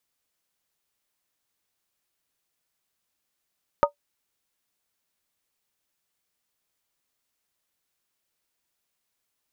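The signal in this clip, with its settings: skin hit, lowest mode 579 Hz, modes 3, decay 0.11 s, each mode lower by 1 dB, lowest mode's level -12.5 dB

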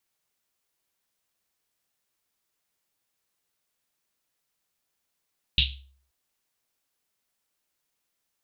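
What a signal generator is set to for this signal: Risset drum length 0.53 s, pitch 67 Hz, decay 0.58 s, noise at 3300 Hz, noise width 1300 Hz, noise 60%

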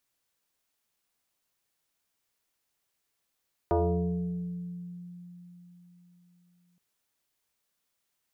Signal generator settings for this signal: FM tone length 3.07 s, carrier 176 Hz, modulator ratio 1.47, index 2.9, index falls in 1.89 s exponential, decay 4.07 s, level -21 dB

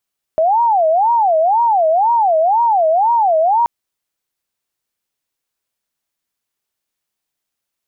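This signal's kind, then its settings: siren wail 629–948 Hz 2/s sine -10 dBFS 3.28 s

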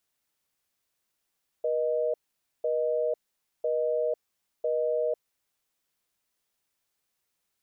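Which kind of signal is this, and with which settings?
call progress tone busy tone, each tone -27 dBFS 3.99 s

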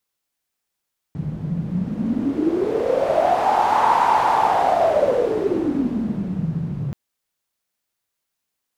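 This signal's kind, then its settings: wind-like swept noise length 5.78 s, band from 150 Hz, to 920 Hz, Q 9.6, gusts 1, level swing 9 dB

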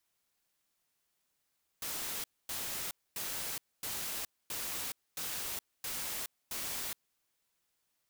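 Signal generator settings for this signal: noise bursts white, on 0.42 s, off 0.25 s, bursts 8, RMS -38.5 dBFS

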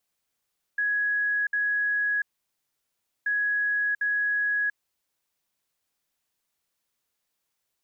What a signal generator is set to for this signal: beep pattern sine 1670 Hz, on 0.69 s, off 0.06 s, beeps 2, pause 1.04 s, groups 2, -22.5 dBFS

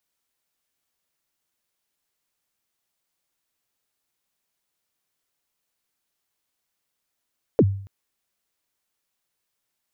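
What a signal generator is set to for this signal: kick drum length 0.28 s, from 550 Hz, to 98 Hz, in 51 ms, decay 0.54 s, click off, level -9.5 dB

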